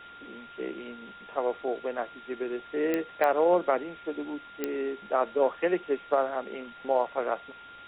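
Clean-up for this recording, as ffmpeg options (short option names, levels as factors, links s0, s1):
-af "adeclick=t=4,bandreject=f=1400:w=30,afftdn=nr=25:nf=-48"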